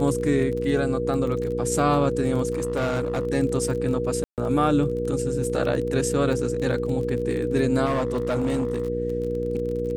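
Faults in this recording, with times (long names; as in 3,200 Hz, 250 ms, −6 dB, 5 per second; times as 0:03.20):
surface crackle 24 per second −30 dBFS
mains hum 60 Hz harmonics 8 −30 dBFS
whistle 480 Hz −28 dBFS
0:02.53–0:03.27: clipping −20.5 dBFS
0:04.24–0:04.38: drop-out 138 ms
0:07.85–0:08.88: clipping −19.5 dBFS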